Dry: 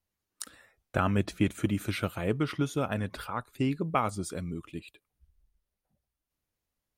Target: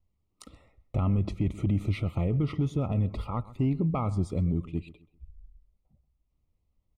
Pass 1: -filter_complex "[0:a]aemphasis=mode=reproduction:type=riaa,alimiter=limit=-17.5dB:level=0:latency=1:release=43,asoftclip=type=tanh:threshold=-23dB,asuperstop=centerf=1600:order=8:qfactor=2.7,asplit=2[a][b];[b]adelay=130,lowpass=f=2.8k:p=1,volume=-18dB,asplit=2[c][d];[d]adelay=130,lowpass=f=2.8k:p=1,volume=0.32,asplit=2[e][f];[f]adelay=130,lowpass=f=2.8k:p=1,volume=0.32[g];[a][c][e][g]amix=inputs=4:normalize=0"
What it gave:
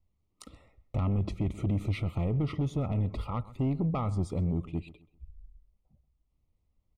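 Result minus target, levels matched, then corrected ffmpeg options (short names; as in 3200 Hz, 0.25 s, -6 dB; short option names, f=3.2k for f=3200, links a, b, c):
soft clip: distortion +12 dB
-filter_complex "[0:a]aemphasis=mode=reproduction:type=riaa,alimiter=limit=-17.5dB:level=0:latency=1:release=43,asoftclip=type=tanh:threshold=-15dB,asuperstop=centerf=1600:order=8:qfactor=2.7,asplit=2[a][b];[b]adelay=130,lowpass=f=2.8k:p=1,volume=-18dB,asplit=2[c][d];[d]adelay=130,lowpass=f=2.8k:p=1,volume=0.32,asplit=2[e][f];[f]adelay=130,lowpass=f=2.8k:p=1,volume=0.32[g];[a][c][e][g]amix=inputs=4:normalize=0"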